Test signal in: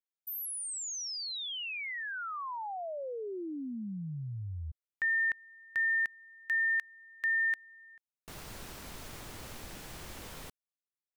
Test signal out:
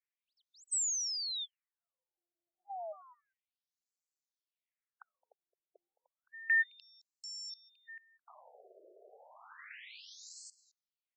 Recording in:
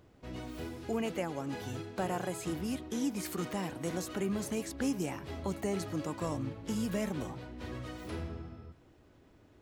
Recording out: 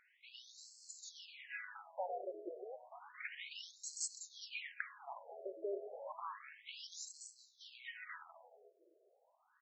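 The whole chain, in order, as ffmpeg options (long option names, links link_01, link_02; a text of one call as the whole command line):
ffmpeg -i in.wav -af "equalizer=frequency=125:width_type=o:width=1:gain=7,equalizer=frequency=2000:width_type=o:width=1:gain=10,equalizer=frequency=8000:width_type=o:width=1:gain=11,asoftclip=type=tanh:threshold=-19.5dB,aeval=exprs='0.1*(cos(1*acos(clip(val(0)/0.1,-1,1)))-cos(1*PI/2))+0.00891*(cos(4*acos(clip(val(0)/0.1,-1,1)))-cos(4*PI/2))+0.00398*(cos(8*acos(clip(val(0)/0.1,-1,1)))-cos(8*PI/2))':channel_layout=same,aecho=1:1:216:0.126,afftfilt=real='re*between(b*sr/1024,480*pow(5900/480,0.5+0.5*sin(2*PI*0.31*pts/sr))/1.41,480*pow(5900/480,0.5+0.5*sin(2*PI*0.31*pts/sr))*1.41)':imag='im*between(b*sr/1024,480*pow(5900/480,0.5+0.5*sin(2*PI*0.31*pts/sr))/1.41,480*pow(5900/480,0.5+0.5*sin(2*PI*0.31*pts/sr))*1.41)':win_size=1024:overlap=0.75,volume=-4dB" out.wav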